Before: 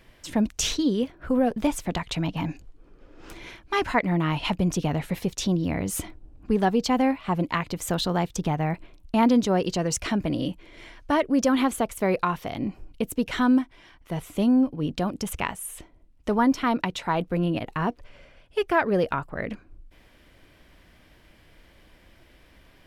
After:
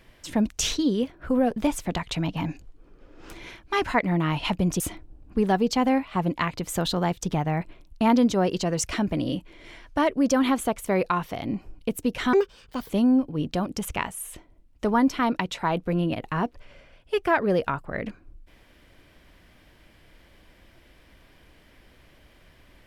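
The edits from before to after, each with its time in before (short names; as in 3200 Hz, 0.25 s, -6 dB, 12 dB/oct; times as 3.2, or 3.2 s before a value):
4.8–5.93 cut
13.46–14.34 speed 155%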